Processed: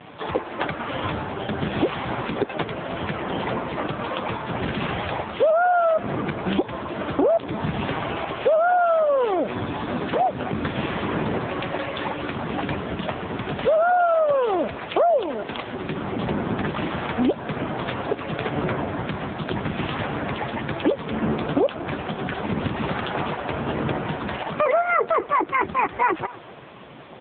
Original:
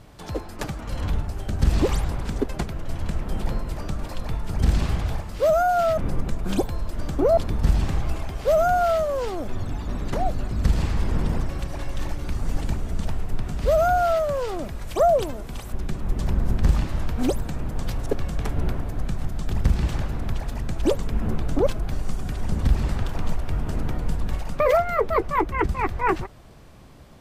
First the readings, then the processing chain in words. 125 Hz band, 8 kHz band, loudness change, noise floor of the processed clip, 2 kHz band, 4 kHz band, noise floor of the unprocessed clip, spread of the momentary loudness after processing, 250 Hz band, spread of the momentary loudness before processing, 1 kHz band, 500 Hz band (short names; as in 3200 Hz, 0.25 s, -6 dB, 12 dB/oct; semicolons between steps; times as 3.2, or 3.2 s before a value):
-5.0 dB, under -40 dB, +1.0 dB, -37 dBFS, +6.0 dB, +5.0 dB, -37 dBFS, 10 LU, +3.5 dB, 11 LU, +3.5 dB, +2.0 dB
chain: HPF 500 Hz 6 dB/oct; in parallel at +3 dB: limiter -19 dBFS, peak gain reduction 8 dB; on the sum: compressor 5:1, threshold -26 dBFS, peak gain reduction 12.5 dB; short-mantissa float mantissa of 4-bit; on a send: echo 0.244 s -19 dB; on the sum: gain +9 dB; AMR-NB 5.9 kbps 8000 Hz